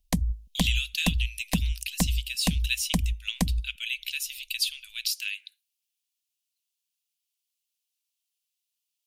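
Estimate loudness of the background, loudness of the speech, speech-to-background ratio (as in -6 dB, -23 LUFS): -30.5 LUFS, -30.5 LUFS, 0.0 dB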